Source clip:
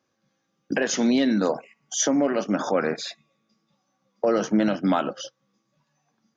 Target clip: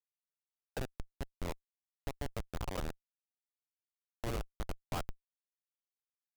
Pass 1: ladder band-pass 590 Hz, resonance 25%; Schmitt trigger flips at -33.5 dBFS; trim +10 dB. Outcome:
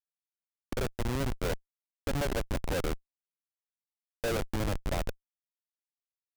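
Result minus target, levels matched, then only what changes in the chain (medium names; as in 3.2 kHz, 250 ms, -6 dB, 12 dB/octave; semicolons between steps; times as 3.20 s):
1 kHz band -3.0 dB
change: ladder band-pass 1.2 kHz, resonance 25%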